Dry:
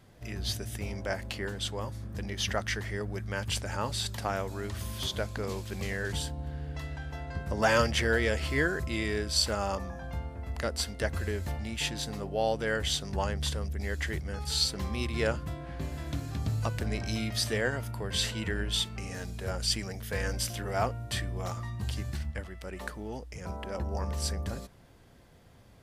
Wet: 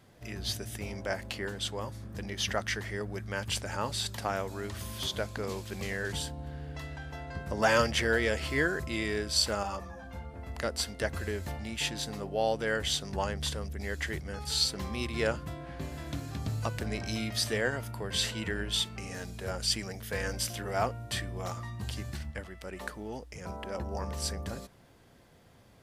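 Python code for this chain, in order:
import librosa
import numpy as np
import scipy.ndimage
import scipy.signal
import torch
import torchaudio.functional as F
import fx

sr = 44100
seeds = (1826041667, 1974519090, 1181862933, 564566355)

y = fx.low_shelf(x, sr, hz=87.0, db=-8.0)
y = fx.ensemble(y, sr, at=(9.63, 10.34))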